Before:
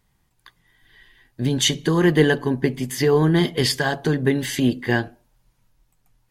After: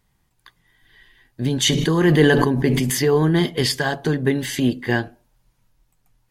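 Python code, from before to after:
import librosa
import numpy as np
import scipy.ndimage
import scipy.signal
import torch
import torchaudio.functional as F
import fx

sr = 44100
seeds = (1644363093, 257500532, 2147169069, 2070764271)

y = fx.sustainer(x, sr, db_per_s=24.0, at=(1.61, 3.1))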